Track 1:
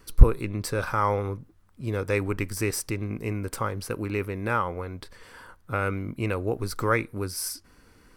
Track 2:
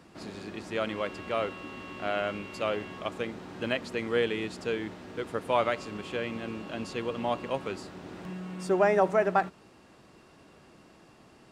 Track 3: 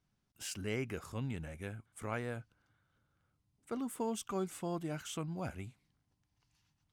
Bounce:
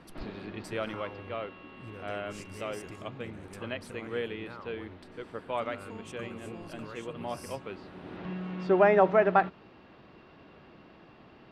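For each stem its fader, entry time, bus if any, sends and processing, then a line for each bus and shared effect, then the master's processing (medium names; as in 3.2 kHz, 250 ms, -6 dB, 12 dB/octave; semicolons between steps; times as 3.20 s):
-13.0 dB, 0.00 s, bus A, no send, none
+2.0 dB, 0.00 s, no bus, no send, low-pass 3.8 kHz 24 dB/octave; auto duck -9 dB, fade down 1.40 s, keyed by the first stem
-2.5 dB, 1.90 s, bus A, no send, none
bus A: 0.0 dB, low-pass 10 kHz 12 dB/octave; compression, threshold -42 dBFS, peak gain reduction 22 dB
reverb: none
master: none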